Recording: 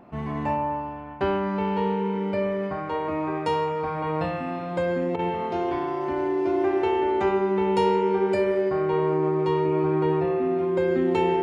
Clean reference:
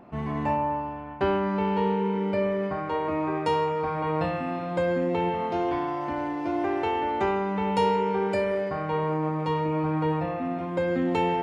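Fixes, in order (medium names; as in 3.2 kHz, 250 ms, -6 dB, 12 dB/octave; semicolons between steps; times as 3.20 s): band-stop 380 Hz, Q 30; interpolate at 5.16 s, 29 ms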